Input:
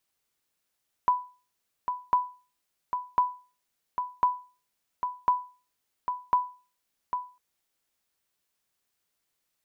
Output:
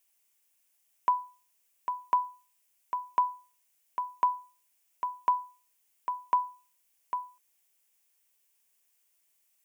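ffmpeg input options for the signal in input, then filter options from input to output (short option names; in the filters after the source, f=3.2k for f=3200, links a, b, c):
-f lavfi -i "aevalsrc='0.188*(sin(2*PI*993*mod(t,1.05))*exp(-6.91*mod(t,1.05)/0.35)+0.422*sin(2*PI*993*max(mod(t,1.05)-0.8,0))*exp(-6.91*max(mod(t,1.05)-0.8,0)/0.35))':d=6.3:s=44100"
-af "highpass=f=430:p=1,aexciter=amount=1.2:drive=6.3:freq=2.2k,equalizer=f=1.3k:t=o:w=0.25:g=-4.5"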